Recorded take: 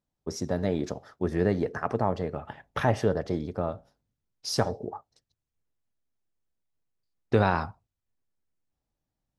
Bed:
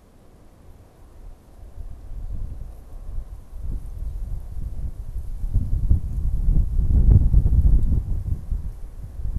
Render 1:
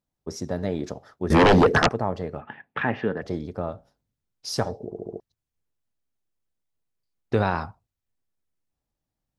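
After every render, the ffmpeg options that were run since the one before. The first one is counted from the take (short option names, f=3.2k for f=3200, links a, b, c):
-filter_complex "[0:a]asettb=1/sr,asplit=3[a][b][c];[a]atrim=end=1.304[d];[b]atrim=start=1.3:end=1.89,asetpts=PTS-STARTPTS,afade=t=in:d=0.004:c=qsin,afade=t=out:st=0.586:d=0.004:c=qsin,aeval=exprs='0.282*sin(PI/2*5.01*val(0)/0.282)':c=same[e];[c]atrim=start=1.886[f];[d][e]acrossfade=d=0.004:c1=hsin:c2=qsin[g];[g][f]acrossfade=d=0.004:c1=qsin:c2=hsin,asettb=1/sr,asplit=3[h][i][j];[h]atrim=end=2.414[k];[i]atrim=start=2.41:end=3.22,asetpts=PTS-STARTPTS,afade=t=in:d=0.004:c=qsin,afade=t=out:st=0.806:d=0.004:c=qsin,highpass=160,equalizer=f=230:t=q:w=4:g=5,equalizer=f=610:t=q:w=4:g=-8,equalizer=f=1.7k:t=q:w=4:g=7,equalizer=f=2.5k:t=q:w=4:g=6,lowpass=f=3.3k:w=0.5412,lowpass=f=3.3k:w=1.3066[l];[j]atrim=start=3.216[m];[k][l]acrossfade=d=0.004:c1=hsin:c2=qsin[n];[n][m]acrossfade=d=0.004:c1=qsin:c2=hsin,asplit=6[o][p][q][r][s][t];[o]atrim=end=4.922[u];[p]atrim=start=4.848:end=4.922[v];[q]atrim=start=4.848:end=4.922[w];[r]atrim=start=4.848:end=4.922[x];[s]atrim=start=4.848:end=4.922[y];[t]atrim=start=5.198[z];[u][v]acrossfade=d=0.004:c1=hsin:c2=hsin[aa];[aa][w]acrossfade=d=0.004:c1=hsin:c2=hsin[ab];[ab][x]acrossfade=d=0.004:c1=hsin:c2=hsin[ac];[ac][y]acrossfade=d=0.004:c1=hsin:c2=hsin[ad];[ad][z]acrossfade=d=0.004:c1=hsin:c2=hsin"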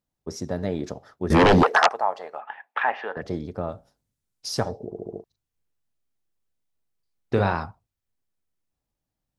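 -filter_complex "[0:a]asettb=1/sr,asplit=3[a][b][c];[a]atrim=end=1.634[d];[b]atrim=start=1.63:end=3.17,asetpts=PTS-STARTPTS,afade=t=in:d=0.004:c=qsin,afade=t=out:st=1.536:d=0.004:c=qsin,highpass=f=800:t=q:w=2.1[e];[c]atrim=start=3.166[f];[d][e]acrossfade=d=0.004:c1=hsin:c2=qsin[g];[g][f]acrossfade=d=0.004:c1=qsin:c2=hsin,asettb=1/sr,asplit=3[h][i][j];[h]atrim=end=3.694[k];[i]atrim=start=3.69:end=4.48,asetpts=PTS-STARTPTS,afade=t=in:d=0.004:c=qsin,afade=t=out:st=0.786:d=0.004:c=qsin,equalizer=f=9.2k:w=0.69:g=6.5[l];[j]atrim=start=4.476[m];[k][l]acrossfade=d=0.004:c1=hsin:c2=qsin[n];[n][m]acrossfade=d=0.004:c1=qsin:c2=hsin,asettb=1/sr,asplit=3[o][p][q];[o]atrim=end=5.104[r];[p]atrim=start=5.1:end=7.53,asetpts=PTS-STARTPTS,afade=t=in:d=0.004:c=qsin,afade=t=out:st=2.426:d=0.004:c=qsin,asplit=2[s][t];[t]adelay=40,volume=-7.5dB[u];[s][u]amix=inputs=2:normalize=0,atrim=end_sample=107163[v];[q]atrim=start=7.526[w];[r][v]acrossfade=d=0.004:c1=hsin:c2=qsin[x];[x][w]acrossfade=d=0.004:c1=qsin:c2=hsin"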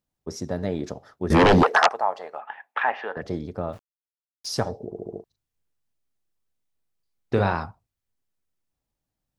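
-filter_complex "[0:a]asplit=3[a][b][c];[a]afade=t=out:st=3.72:d=0.02[d];[b]aeval=exprs='val(0)*gte(abs(val(0)),0.00531)':c=same,afade=t=in:st=3.72:d=0.02,afade=t=out:st=4.47:d=0.02[e];[c]afade=t=in:st=4.47:d=0.02[f];[d][e][f]amix=inputs=3:normalize=0"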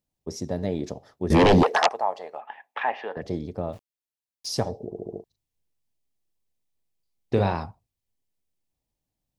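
-af "equalizer=f=1.4k:w=2.2:g=-9.5"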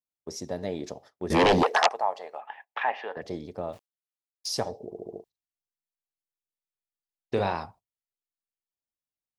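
-af "agate=range=-15dB:threshold=-47dB:ratio=16:detection=peak,lowshelf=f=280:g=-11.5"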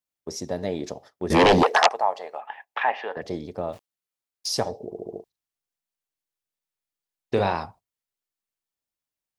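-af "volume=4dB"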